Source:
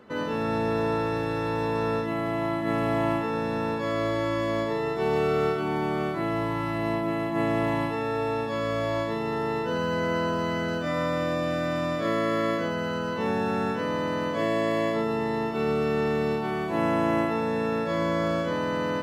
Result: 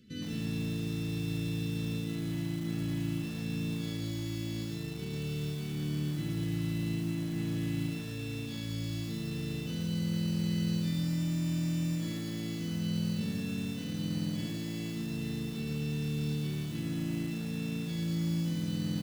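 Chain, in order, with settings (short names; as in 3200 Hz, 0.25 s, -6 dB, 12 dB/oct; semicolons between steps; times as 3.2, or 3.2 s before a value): vocal rider 0.5 s; Chebyshev band-stop 180–3900 Hz, order 2; on a send: echo 0.161 s -12.5 dB; on the sum: lo-fi delay 0.114 s, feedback 55%, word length 7-bit, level -6 dB; gain -2 dB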